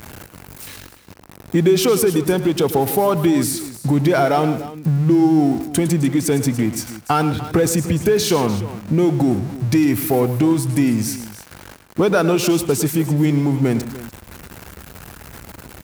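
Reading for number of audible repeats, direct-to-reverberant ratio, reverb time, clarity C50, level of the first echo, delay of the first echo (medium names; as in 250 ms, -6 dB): 3, no reverb, no reverb, no reverb, -12.5 dB, 107 ms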